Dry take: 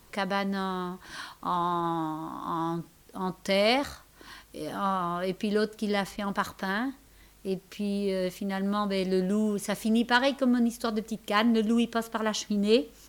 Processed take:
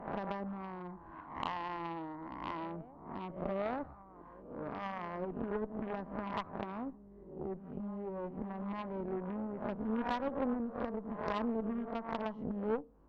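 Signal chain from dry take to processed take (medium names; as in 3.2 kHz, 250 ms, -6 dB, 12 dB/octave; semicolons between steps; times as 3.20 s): reverse spectral sustain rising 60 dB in 0.70 s; Chebyshev low-pass 1 kHz, order 3; compression 2.5:1, threshold -33 dBFS, peak gain reduction 10.5 dB; reverse echo 853 ms -16.5 dB; Chebyshev shaper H 3 -14 dB, 6 -16 dB, 8 -23 dB, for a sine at -20.5 dBFS; trim +1.5 dB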